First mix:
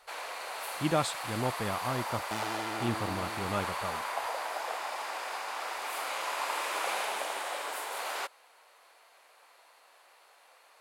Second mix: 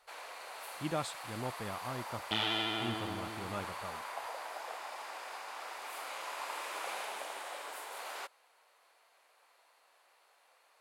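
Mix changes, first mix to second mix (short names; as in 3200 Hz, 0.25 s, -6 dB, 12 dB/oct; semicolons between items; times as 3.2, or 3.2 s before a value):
speech -7.5 dB; first sound -7.5 dB; second sound: add synth low-pass 3300 Hz, resonance Q 7.7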